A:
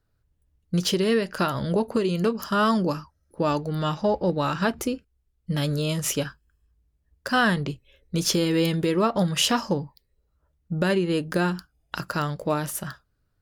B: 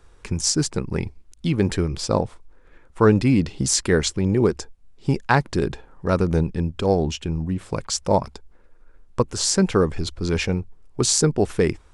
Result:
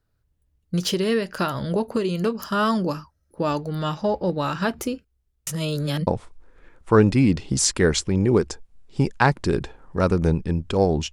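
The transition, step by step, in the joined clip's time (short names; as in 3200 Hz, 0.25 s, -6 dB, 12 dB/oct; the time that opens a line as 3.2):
A
5.47–6.07 reverse
6.07 switch to B from 2.16 s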